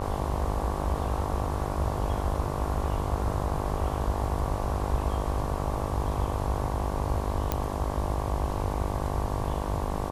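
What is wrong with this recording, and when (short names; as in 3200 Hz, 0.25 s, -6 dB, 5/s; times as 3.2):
buzz 50 Hz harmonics 23 -33 dBFS
7.52 pop -11 dBFS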